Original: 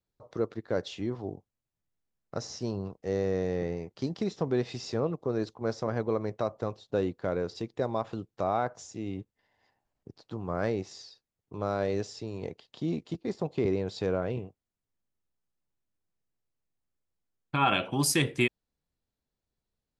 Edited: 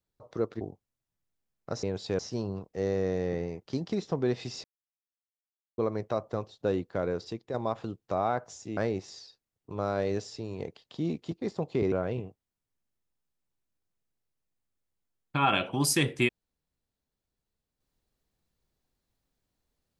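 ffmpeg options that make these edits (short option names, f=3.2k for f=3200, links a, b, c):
-filter_complex "[0:a]asplit=9[a][b][c][d][e][f][g][h][i];[a]atrim=end=0.612[j];[b]atrim=start=1.258:end=2.482[k];[c]atrim=start=13.748:end=14.112[l];[d]atrim=start=2.478:end=4.93,asetpts=PTS-STARTPTS,afade=t=out:st=2.448:d=0.004:c=hsin[m];[e]atrim=start=4.93:end=6.07,asetpts=PTS-STARTPTS,volume=0[n];[f]atrim=start=6.07:end=7.83,asetpts=PTS-STARTPTS,afade=t=in:d=0.004:c=hsin,afade=t=out:st=1.32:d=0.44:c=qsin:silence=0.473151[o];[g]atrim=start=7.83:end=9.062,asetpts=PTS-STARTPTS,afade=t=in:d=0.004:c=hsin:silence=0.473151[p];[h]atrim=start=10.598:end=13.752[q];[i]atrim=start=14.108[r];[j][k]acrossfade=d=0.004:c1=hsin:c2=hsin[s];[s][l]acrossfade=d=0.004:c1=hsin:c2=hsin[t];[m][n][o][p]concat=n=4:v=0:a=1[u];[t][u]acrossfade=d=0.004:c1=hsin:c2=hsin[v];[v][q]acrossfade=d=0.004:c1=hsin:c2=hsin[w];[w][r]acrossfade=d=0.004:c1=hsin:c2=hsin"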